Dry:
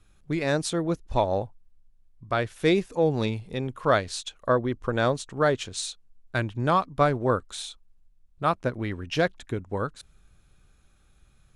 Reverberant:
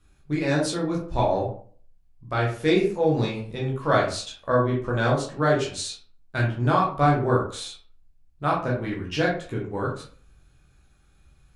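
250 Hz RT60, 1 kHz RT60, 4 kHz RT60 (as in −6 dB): 0.50 s, 0.45 s, 0.25 s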